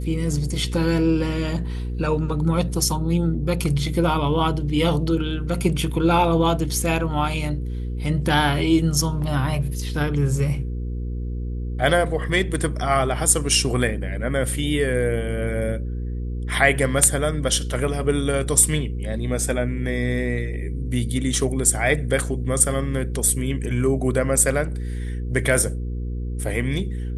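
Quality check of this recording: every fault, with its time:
mains hum 60 Hz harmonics 8 −27 dBFS
0:24.63–0:25.10: clipping −23 dBFS

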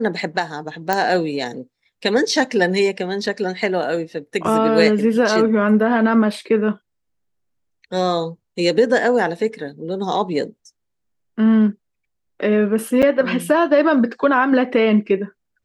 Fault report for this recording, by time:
0:00.93: click −4 dBFS
0:13.02–0:13.03: drop-out 7.2 ms

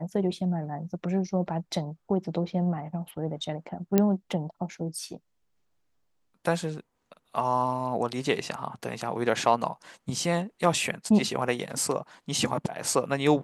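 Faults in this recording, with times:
0:03.98: click −8 dBFS

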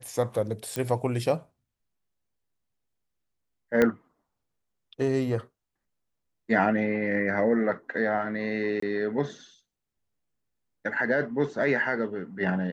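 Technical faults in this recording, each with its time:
0:00.76: click −15 dBFS
0:03.82: click −10 dBFS
0:08.80–0:08.82: drop-out 24 ms

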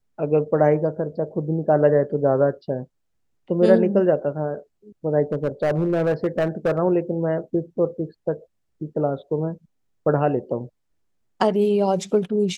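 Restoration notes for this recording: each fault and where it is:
0:05.32–0:06.79: clipping −16 dBFS

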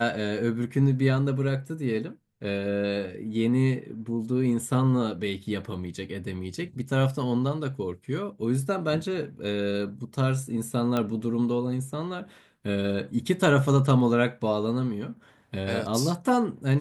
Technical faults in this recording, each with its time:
0:10.97: click −14 dBFS

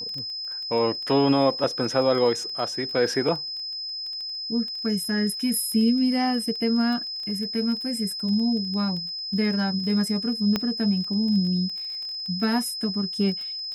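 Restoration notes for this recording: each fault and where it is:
surface crackle 16 per second −31 dBFS
whistle 5,100 Hz −30 dBFS
0:10.56: click −10 dBFS

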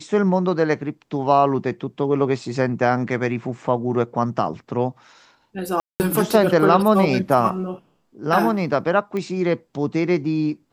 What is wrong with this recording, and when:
0:05.80–0:06.00: drop-out 199 ms
0:09.17: click −17 dBFS

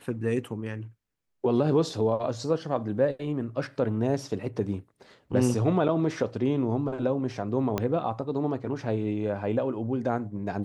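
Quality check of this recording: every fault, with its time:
0:07.78: click −13 dBFS

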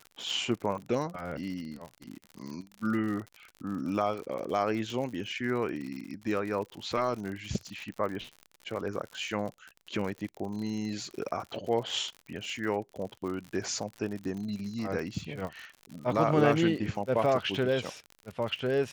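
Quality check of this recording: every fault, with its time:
surface crackle 63 per second −36 dBFS

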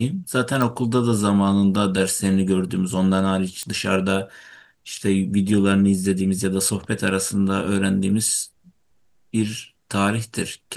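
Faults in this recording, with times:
0:00.62: click
0:03.63: click −14 dBFS

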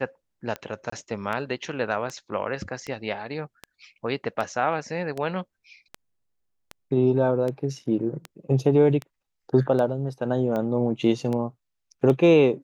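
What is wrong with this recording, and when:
scratch tick 78 rpm −18 dBFS
0:00.90–0:00.92: drop-out 24 ms

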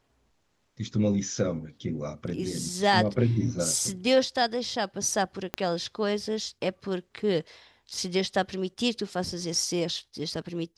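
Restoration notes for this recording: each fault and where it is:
0:05.54: click −13 dBFS

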